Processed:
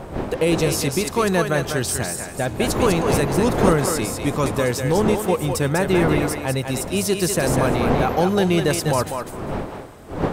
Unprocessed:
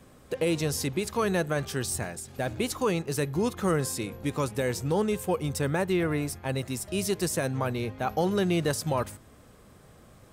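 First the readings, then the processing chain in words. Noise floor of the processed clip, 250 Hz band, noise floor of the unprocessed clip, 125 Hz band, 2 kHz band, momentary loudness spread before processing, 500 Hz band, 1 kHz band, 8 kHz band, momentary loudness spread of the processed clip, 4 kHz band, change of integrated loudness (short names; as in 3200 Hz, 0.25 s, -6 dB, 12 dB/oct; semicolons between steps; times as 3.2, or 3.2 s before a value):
-34 dBFS, +8.5 dB, -54 dBFS, +8.0 dB, +9.0 dB, 6 LU, +9.0 dB, +10.0 dB, +8.5 dB, 9 LU, +8.5 dB, +8.5 dB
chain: wind noise 520 Hz -34 dBFS; thinning echo 0.199 s, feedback 18%, high-pass 420 Hz, level -4.5 dB; gain +7 dB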